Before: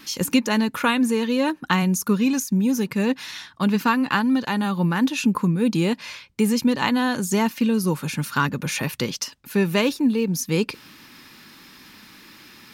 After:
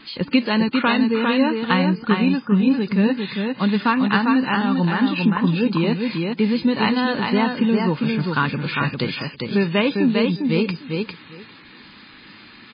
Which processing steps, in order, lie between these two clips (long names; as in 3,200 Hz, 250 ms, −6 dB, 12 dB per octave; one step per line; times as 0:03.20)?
repeating echo 401 ms, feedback 15%, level −4 dB
level +1.5 dB
MP3 16 kbit/s 11,025 Hz